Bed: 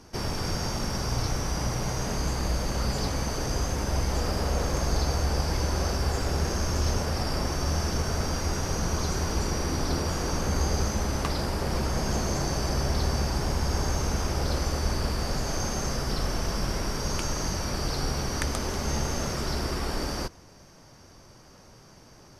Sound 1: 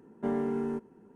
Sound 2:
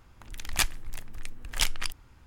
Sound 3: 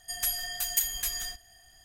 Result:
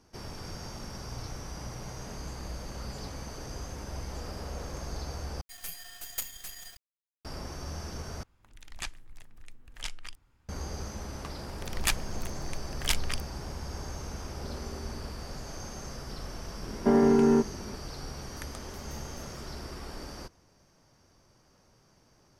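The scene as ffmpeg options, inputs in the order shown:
ffmpeg -i bed.wav -i cue0.wav -i cue1.wav -i cue2.wav -filter_complex "[3:a]asplit=2[link_01][link_02];[2:a]asplit=2[link_03][link_04];[1:a]asplit=2[link_05][link_06];[0:a]volume=-11.5dB[link_07];[link_01]acrusher=bits=4:dc=4:mix=0:aa=0.000001[link_08];[link_03]acrossover=split=9900[link_09][link_10];[link_10]acompressor=threshold=-53dB:ratio=4:attack=1:release=60[link_11];[link_09][link_11]amix=inputs=2:normalize=0[link_12];[link_05]acompressor=threshold=-40dB:ratio=6:attack=3.2:release=140:knee=1:detection=peak[link_13];[link_06]alimiter=level_in=24dB:limit=-1dB:release=50:level=0:latency=1[link_14];[link_02]acompressor=threshold=-46dB:ratio=2.5:attack=1.3:release=35:knee=1:detection=peak[link_15];[link_07]asplit=3[link_16][link_17][link_18];[link_16]atrim=end=5.414[link_19];[link_08]atrim=end=1.84,asetpts=PTS-STARTPTS,volume=-7.5dB[link_20];[link_17]atrim=start=7.246:end=8.234[link_21];[link_12]atrim=end=2.26,asetpts=PTS-STARTPTS,volume=-11.5dB[link_22];[link_18]atrim=start=10.486[link_23];[link_04]atrim=end=2.26,asetpts=PTS-STARTPTS,volume=-2dB,afade=type=in:duration=0.004:curve=hsin,afade=type=out:start_time=2.256:duration=0.004:curve=hsin,adelay=11280[link_24];[link_13]atrim=end=1.14,asetpts=PTS-STARTPTS,volume=-3.5dB,afade=type=in:duration=0.004:curve=hsin,afade=type=out:start_time=1.136:duration=0.004:curve=hsin,adelay=14210[link_25];[link_14]atrim=end=1.14,asetpts=PTS-STARTPTS,volume=-12.5dB,afade=type=in:duration=0.004:curve=hsin,afade=type=out:start_time=1.136:duration=0.004:curve=hsin,adelay=16630[link_26];[link_15]atrim=end=1.84,asetpts=PTS-STARTPTS,volume=-15.5dB,afade=type=in:duration=0.004:curve=hsin,afade=type=out:start_time=1.836:duration=0.004:curve=hsin,adelay=18140[link_27];[link_19][link_20]acrossfade=duration=0.004:curve1=hsin:curve2=hsin[link_28];[link_28][link_21]acrossfade=duration=0.004:curve1=hsin:curve2=hsin[link_29];[link_29][link_22]acrossfade=duration=0.004:curve1=hsin:curve2=hsin[link_30];[link_30][link_23]acrossfade=duration=0.004:curve1=hsin:curve2=hsin[link_31];[link_31][link_24][link_25][link_26][link_27]amix=inputs=5:normalize=0" out.wav

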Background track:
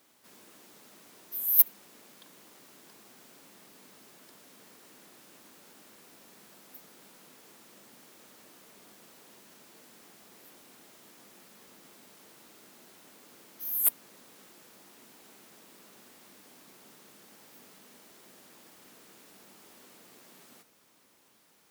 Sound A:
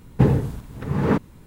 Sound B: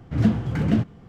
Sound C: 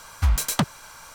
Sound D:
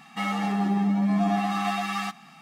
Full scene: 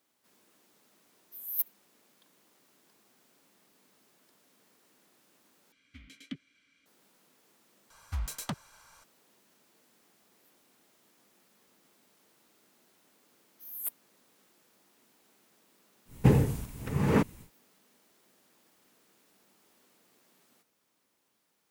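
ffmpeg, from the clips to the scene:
ffmpeg -i bed.wav -i cue0.wav -i cue1.wav -i cue2.wav -filter_complex "[3:a]asplit=2[link_01][link_02];[0:a]volume=-11dB[link_03];[link_01]asplit=3[link_04][link_05][link_06];[link_04]bandpass=frequency=270:width_type=q:width=8,volume=0dB[link_07];[link_05]bandpass=frequency=2290:width_type=q:width=8,volume=-6dB[link_08];[link_06]bandpass=frequency=3010:width_type=q:width=8,volume=-9dB[link_09];[link_07][link_08][link_09]amix=inputs=3:normalize=0[link_10];[1:a]aexciter=amount=2.3:drive=2.6:freq=2100[link_11];[link_03]asplit=3[link_12][link_13][link_14];[link_12]atrim=end=5.724[link_15];[link_10]atrim=end=1.14,asetpts=PTS-STARTPTS,volume=-7dB[link_16];[link_13]atrim=start=6.856:end=7.904[link_17];[link_02]atrim=end=1.14,asetpts=PTS-STARTPTS,volume=-14dB[link_18];[link_14]atrim=start=9.036[link_19];[link_11]atrim=end=1.46,asetpts=PTS-STARTPTS,volume=-5dB,afade=type=in:duration=0.1,afade=type=out:start_time=1.36:duration=0.1,adelay=16050[link_20];[link_15][link_16]acrossfade=duration=0.004:curve1=hsin:curve2=hsin[link_21];[link_21][link_17]acrossfade=duration=0.004:curve1=hsin:curve2=hsin[link_22];[link_22][link_18]acrossfade=duration=0.004:curve1=hsin:curve2=hsin[link_23];[link_23][link_19]acrossfade=duration=0.004:curve1=hsin:curve2=hsin[link_24];[link_24][link_20]amix=inputs=2:normalize=0" out.wav

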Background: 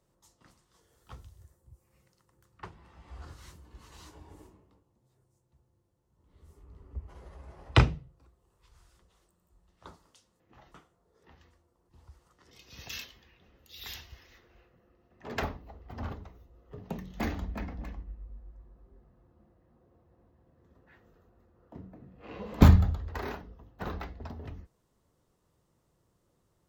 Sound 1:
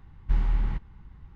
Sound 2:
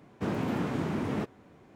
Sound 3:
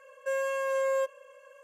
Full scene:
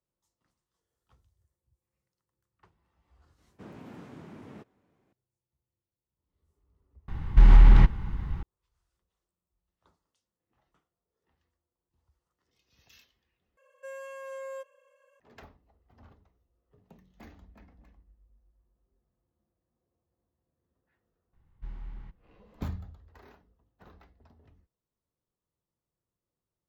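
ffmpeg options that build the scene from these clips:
ffmpeg -i bed.wav -i cue0.wav -i cue1.wav -i cue2.wav -filter_complex "[1:a]asplit=2[link_01][link_02];[0:a]volume=-18.5dB[link_03];[link_01]alimiter=level_in=21dB:limit=-1dB:release=50:level=0:latency=1[link_04];[link_03]asplit=2[link_05][link_06];[link_05]atrim=end=13.574[link_07];[3:a]atrim=end=1.63,asetpts=PTS-STARTPTS,volume=-12dB[link_08];[link_06]atrim=start=15.196[link_09];[2:a]atrim=end=1.75,asetpts=PTS-STARTPTS,volume=-16dB,afade=type=in:duration=0.004:curve=hsin,afade=type=out:start_time=1.746:duration=0.004:curve=hsin,adelay=3380[link_10];[link_04]atrim=end=1.35,asetpts=PTS-STARTPTS,volume=-6dB,afade=type=in:duration=0.004:curve=hsin,afade=type=out:start_time=1.346:duration=0.004:curve=hsin,adelay=7080[link_11];[link_02]atrim=end=1.35,asetpts=PTS-STARTPTS,volume=-17dB,afade=type=in:duration=0.004:curve=hsin,afade=type=out:start_time=1.346:duration=0.004:curve=hsin,adelay=21330[link_12];[link_07][link_08]acrossfade=duration=0.004:curve1=hsin:curve2=hsin[link_13];[link_13][link_09]acrossfade=duration=0.004:curve1=hsin:curve2=hsin[link_14];[link_14][link_10][link_11][link_12]amix=inputs=4:normalize=0" out.wav

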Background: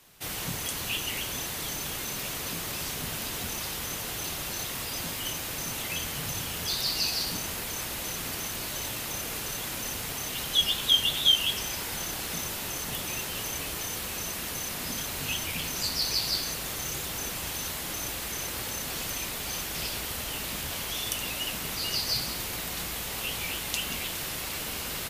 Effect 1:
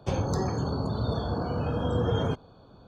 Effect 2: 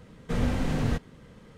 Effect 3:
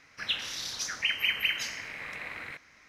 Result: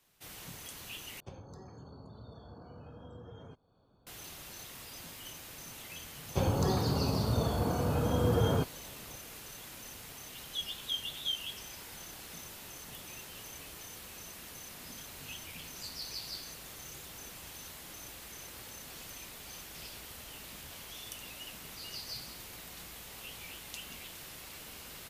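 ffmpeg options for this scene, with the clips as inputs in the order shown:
ffmpeg -i bed.wav -i cue0.wav -filter_complex "[1:a]asplit=2[link_01][link_02];[0:a]volume=-13.5dB[link_03];[link_01]acompressor=threshold=-35dB:ratio=3:attack=51:release=627:knee=1:detection=peak[link_04];[link_03]asplit=2[link_05][link_06];[link_05]atrim=end=1.204[link_07];[link_04]atrim=end=2.87,asetpts=PTS-STARTPTS,volume=-15dB[link_08];[link_06]atrim=start=4.066[link_09];[link_02]atrim=end=2.87,asetpts=PTS-STARTPTS,volume=-1.5dB,afade=type=in:duration=0.004:curve=hsin,afade=type=out:start_time=2.866:duration=0.004:curve=hsin,adelay=6290[link_10];[link_07][link_08]acrossfade=duration=0.004:curve1=hsin:curve2=hsin[link_11];[link_11][link_09]acrossfade=duration=0.004:curve1=hsin:curve2=hsin[link_12];[link_12][link_10]amix=inputs=2:normalize=0" out.wav

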